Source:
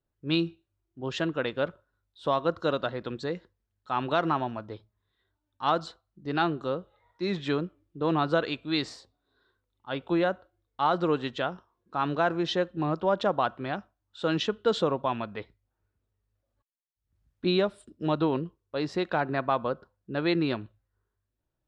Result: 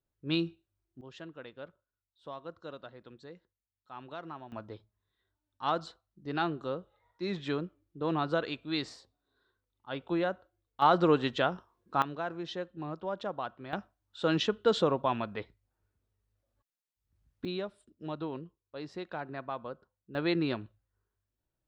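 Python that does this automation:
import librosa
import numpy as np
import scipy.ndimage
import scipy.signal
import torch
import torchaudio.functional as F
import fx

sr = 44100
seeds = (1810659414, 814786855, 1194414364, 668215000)

y = fx.gain(x, sr, db=fx.steps((0.0, -4.0), (1.01, -17.0), (4.52, -5.0), (10.82, 1.5), (12.02, -10.5), (13.73, -1.0), (17.45, -11.5), (20.15, -3.5)))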